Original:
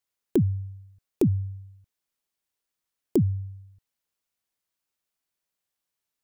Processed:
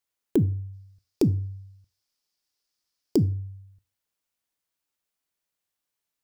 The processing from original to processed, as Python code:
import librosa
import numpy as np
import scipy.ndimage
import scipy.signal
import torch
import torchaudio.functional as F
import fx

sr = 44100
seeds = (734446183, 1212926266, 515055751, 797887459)

y = fx.peak_eq(x, sr, hz=5000.0, db=13.0, octaves=0.61, at=(0.73, 3.17))
y = fx.rev_fdn(y, sr, rt60_s=0.43, lf_ratio=0.85, hf_ratio=0.75, size_ms=20.0, drr_db=15.0)